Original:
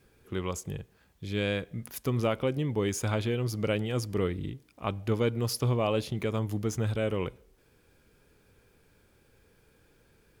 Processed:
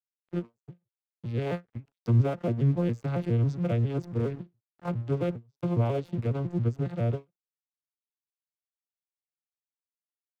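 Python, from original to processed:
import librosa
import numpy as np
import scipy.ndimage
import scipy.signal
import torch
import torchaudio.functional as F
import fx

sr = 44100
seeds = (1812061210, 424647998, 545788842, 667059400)

y = fx.vocoder_arp(x, sr, chord='minor triad', root=46, every_ms=137)
y = fx.peak_eq(y, sr, hz=fx.line((1.45, 830.0), (2.07, 4800.0)), db=14.0, octaves=0.66, at=(1.45, 2.07), fade=0.02)
y = np.sign(y) * np.maximum(np.abs(y) - 10.0 ** (-51.5 / 20.0), 0.0)
y = fx.end_taper(y, sr, db_per_s=370.0)
y = F.gain(torch.from_numpy(y), 4.0).numpy()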